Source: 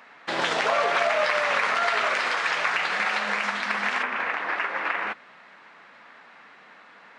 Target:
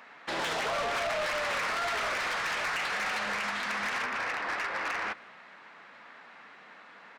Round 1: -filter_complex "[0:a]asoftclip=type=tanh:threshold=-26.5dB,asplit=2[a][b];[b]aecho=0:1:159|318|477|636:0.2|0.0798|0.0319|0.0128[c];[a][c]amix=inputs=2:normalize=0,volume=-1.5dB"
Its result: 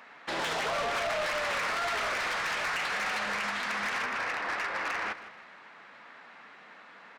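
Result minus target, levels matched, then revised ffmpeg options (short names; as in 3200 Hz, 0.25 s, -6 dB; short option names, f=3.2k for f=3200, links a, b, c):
echo-to-direct +9.5 dB
-filter_complex "[0:a]asoftclip=type=tanh:threshold=-26.5dB,asplit=2[a][b];[b]aecho=0:1:159|318|477:0.0668|0.0267|0.0107[c];[a][c]amix=inputs=2:normalize=0,volume=-1.5dB"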